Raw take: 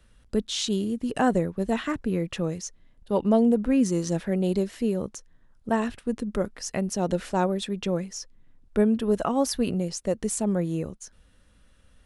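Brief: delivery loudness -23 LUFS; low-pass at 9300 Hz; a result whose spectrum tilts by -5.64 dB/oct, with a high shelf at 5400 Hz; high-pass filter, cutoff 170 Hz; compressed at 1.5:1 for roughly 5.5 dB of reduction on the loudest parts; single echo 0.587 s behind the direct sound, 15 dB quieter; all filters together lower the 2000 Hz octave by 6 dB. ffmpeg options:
-af "highpass=170,lowpass=9.3k,equalizer=f=2k:t=o:g=-7.5,highshelf=f=5.4k:g=-5,acompressor=threshold=-33dB:ratio=1.5,aecho=1:1:587:0.178,volume=9dB"

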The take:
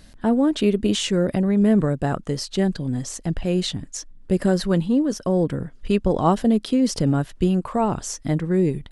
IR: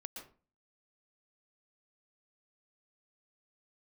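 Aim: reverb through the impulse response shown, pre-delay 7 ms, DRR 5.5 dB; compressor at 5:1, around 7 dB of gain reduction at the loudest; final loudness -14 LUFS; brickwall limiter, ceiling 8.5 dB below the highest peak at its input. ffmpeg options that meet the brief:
-filter_complex "[0:a]acompressor=threshold=-22dB:ratio=5,alimiter=limit=-21.5dB:level=0:latency=1,asplit=2[a][b];[1:a]atrim=start_sample=2205,adelay=7[c];[b][c]afir=irnorm=-1:irlink=0,volume=-2dB[d];[a][d]amix=inputs=2:normalize=0,volume=15.5dB"

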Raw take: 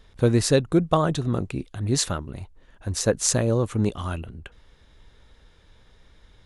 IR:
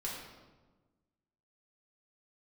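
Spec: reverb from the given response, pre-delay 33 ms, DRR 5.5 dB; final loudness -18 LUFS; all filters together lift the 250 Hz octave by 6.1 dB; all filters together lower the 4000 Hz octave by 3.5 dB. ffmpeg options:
-filter_complex "[0:a]equalizer=f=250:t=o:g=8,equalizer=f=4k:t=o:g=-4.5,asplit=2[a][b];[1:a]atrim=start_sample=2205,adelay=33[c];[b][c]afir=irnorm=-1:irlink=0,volume=-7dB[d];[a][d]amix=inputs=2:normalize=0,volume=1.5dB"

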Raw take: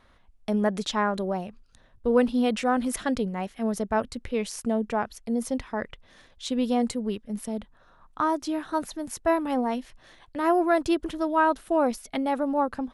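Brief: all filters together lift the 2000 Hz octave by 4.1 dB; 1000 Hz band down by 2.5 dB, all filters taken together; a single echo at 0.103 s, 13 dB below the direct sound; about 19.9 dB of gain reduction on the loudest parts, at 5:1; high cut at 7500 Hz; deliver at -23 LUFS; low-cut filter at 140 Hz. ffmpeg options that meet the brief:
-af "highpass=140,lowpass=7.5k,equalizer=f=1k:t=o:g=-5,equalizer=f=2k:t=o:g=7.5,acompressor=threshold=-40dB:ratio=5,aecho=1:1:103:0.224,volume=19.5dB"

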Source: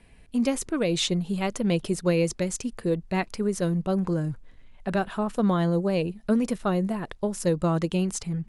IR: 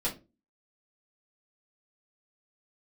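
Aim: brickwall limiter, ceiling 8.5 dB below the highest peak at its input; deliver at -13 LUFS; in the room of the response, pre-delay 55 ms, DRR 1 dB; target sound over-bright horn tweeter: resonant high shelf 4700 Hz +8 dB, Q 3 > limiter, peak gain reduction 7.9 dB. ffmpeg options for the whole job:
-filter_complex "[0:a]alimiter=limit=-20.5dB:level=0:latency=1,asplit=2[a][b];[1:a]atrim=start_sample=2205,adelay=55[c];[b][c]afir=irnorm=-1:irlink=0,volume=-7dB[d];[a][d]amix=inputs=2:normalize=0,highshelf=f=4.7k:t=q:w=3:g=8,volume=13dB,alimiter=limit=-2.5dB:level=0:latency=1"

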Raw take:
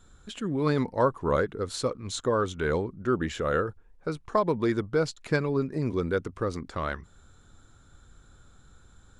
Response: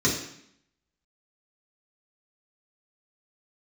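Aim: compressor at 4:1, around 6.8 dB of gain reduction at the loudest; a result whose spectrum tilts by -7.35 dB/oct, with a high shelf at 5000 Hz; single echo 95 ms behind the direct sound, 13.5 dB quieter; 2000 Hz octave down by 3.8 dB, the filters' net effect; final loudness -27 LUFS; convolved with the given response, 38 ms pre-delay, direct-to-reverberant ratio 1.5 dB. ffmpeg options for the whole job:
-filter_complex "[0:a]equalizer=f=2k:t=o:g=-5,highshelf=f=5k:g=-5.5,acompressor=threshold=-28dB:ratio=4,aecho=1:1:95:0.211,asplit=2[a][b];[1:a]atrim=start_sample=2205,adelay=38[c];[b][c]afir=irnorm=-1:irlink=0,volume=-15dB[d];[a][d]amix=inputs=2:normalize=0,volume=0.5dB"

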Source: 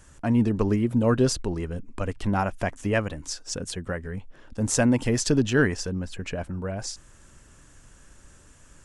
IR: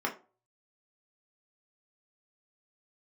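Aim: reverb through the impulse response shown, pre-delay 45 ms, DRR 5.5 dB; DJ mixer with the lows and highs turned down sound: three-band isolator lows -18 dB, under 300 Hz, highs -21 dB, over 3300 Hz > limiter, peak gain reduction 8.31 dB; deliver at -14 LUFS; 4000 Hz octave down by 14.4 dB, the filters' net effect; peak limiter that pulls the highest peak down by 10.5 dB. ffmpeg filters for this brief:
-filter_complex "[0:a]equalizer=f=4k:t=o:g=-8,alimiter=limit=-20dB:level=0:latency=1,asplit=2[a][b];[1:a]atrim=start_sample=2205,adelay=45[c];[b][c]afir=irnorm=-1:irlink=0,volume=-13dB[d];[a][d]amix=inputs=2:normalize=0,acrossover=split=300 3300:gain=0.126 1 0.0891[e][f][g];[e][f][g]amix=inputs=3:normalize=0,volume=24dB,alimiter=limit=-2.5dB:level=0:latency=1"

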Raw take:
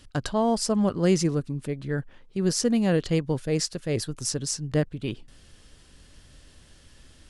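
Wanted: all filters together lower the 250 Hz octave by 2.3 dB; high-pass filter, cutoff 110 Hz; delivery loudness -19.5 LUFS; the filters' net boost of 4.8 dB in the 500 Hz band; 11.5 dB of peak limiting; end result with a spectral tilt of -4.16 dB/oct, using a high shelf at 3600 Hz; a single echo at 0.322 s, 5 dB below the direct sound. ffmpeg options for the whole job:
-af "highpass=110,equalizer=f=250:t=o:g=-5,equalizer=f=500:t=o:g=7,highshelf=f=3.6k:g=8,alimiter=limit=-16.5dB:level=0:latency=1,aecho=1:1:322:0.562,volume=6.5dB"

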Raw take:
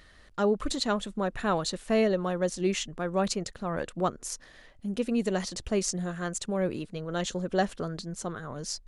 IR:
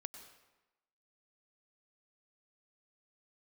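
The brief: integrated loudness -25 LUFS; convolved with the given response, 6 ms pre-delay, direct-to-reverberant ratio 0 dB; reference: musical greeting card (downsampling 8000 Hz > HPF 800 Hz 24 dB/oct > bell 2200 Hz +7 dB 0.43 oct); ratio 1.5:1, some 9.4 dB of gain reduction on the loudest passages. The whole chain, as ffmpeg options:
-filter_complex "[0:a]acompressor=threshold=-48dB:ratio=1.5,asplit=2[a][b];[1:a]atrim=start_sample=2205,adelay=6[c];[b][c]afir=irnorm=-1:irlink=0,volume=4dB[d];[a][d]amix=inputs=2:normalize=0,aresample=8000,aresample=44100,highpass=f=800:w=0.5412,highpass=f=800:w=1.3066,equalizer=f=2.2k:t=o:w=0.43:g=7,volume=18dB"

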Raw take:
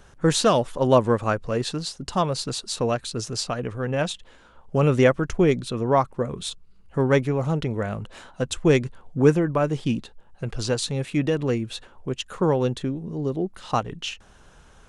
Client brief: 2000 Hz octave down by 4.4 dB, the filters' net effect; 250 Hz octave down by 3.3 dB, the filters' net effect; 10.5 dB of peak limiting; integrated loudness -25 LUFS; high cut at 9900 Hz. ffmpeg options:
-af "lowpass=9.9k,equalizer=f=250:t=o:g=-4.5,equalizer=f=2k:t=o:g=-6,volume=4.5dB,alimiter=limit=-13dB:level=0:latency=1"

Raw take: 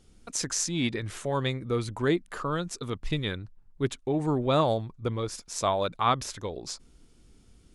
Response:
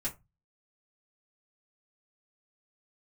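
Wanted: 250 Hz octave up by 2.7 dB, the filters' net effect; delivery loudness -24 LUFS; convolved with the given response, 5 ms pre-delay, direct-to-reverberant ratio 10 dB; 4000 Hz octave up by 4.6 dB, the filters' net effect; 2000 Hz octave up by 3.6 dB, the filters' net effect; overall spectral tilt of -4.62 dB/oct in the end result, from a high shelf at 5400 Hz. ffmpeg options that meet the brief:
-filter_complex "[0:a]equalizer=f=250:t=o:g=3.5,equalizer=f=2k:t=o:g=3.5,equalizer=f=4k:t=o:g=6.5,highshelf=f=5.4k:g=-5,asplit=2[a][b];[1:a]atrim=start_sample=2205,adelay=5[c];[b][c]afir=irnorm=-1:irlink=0,volume=-12dB[d];[a][d]amix=inputs=2:normalize=0,volume=3dB"

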